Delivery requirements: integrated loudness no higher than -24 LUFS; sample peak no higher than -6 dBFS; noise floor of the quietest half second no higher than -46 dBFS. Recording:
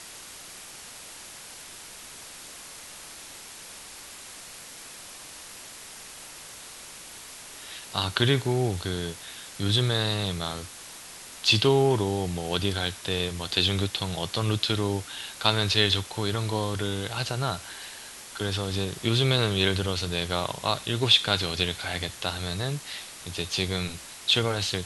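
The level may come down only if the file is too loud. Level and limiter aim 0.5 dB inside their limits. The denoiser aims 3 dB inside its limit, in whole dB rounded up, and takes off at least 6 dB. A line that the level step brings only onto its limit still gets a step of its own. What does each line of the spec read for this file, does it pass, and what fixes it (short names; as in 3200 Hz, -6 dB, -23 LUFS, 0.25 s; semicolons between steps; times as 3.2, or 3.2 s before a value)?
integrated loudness -26.0 LUFS: OK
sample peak -4.5 dBFS: fail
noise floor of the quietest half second -44 dBFS: fail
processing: denoiser 6 dB, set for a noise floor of -44 dBFS; limiter -6.5 dBFS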